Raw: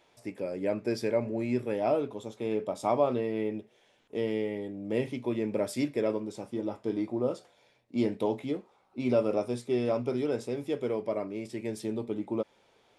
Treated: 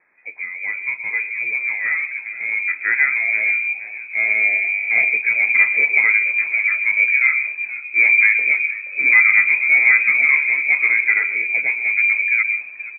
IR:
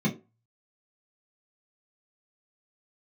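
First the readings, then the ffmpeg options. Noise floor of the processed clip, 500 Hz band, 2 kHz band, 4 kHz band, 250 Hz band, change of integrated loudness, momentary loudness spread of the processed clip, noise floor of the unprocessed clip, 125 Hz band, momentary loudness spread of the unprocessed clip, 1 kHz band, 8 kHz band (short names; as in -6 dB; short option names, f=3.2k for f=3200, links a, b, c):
-35 dBFS, -14.0 dB, +35.0 dB, under -30 dB, under -15 dB, +16.5 dB, 12 LU, -66 dBFS, under -15 dB, 9 LU, +1.0 dB, under -30 dB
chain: -filter_complex "[0:a]asplit=2[a][b];[b]asoftclip=type=hard:threshold=-26dB,volume=-9dB[c];[a][c]amix=inputs=2:normalize=0,asplit=5[d][e][f][g][h];[e]adelay=475,afreqshift=-94,volume=-15dB[i];[f]adelay=950,afreqshift=-188,volume=-22.5dB[j];[g]adelay=1425,afreqshift=-282,volume=-30.1dB[k];[h]adelay=1900,afreqshift=-376,volume=-37.6dB[l];[d][i][j][k][l]amix=inputs=5:normalize=0,asplit=2[m][n];[1:a]atrim=start_sample=2205,adelay=115[o];[n][o]afir=irnorm=-1:irlink=0,volume=-23dB[p];[m][p]amix=inputs=2:normalize=0,lowpass=f=2.2k:t=q:w=0.5098,lowpass=f=2.2k:t=q:w=0.6013,lowpass=f=2.2k:t=q:w=0.9,lowpass=f=2.2k:t=q:w=2.563,afreqshift=-2600,dynaudnorm=f=670:g=9:m=11.5dB,lowshelf=f=88:g=-10,volume=1.5dB"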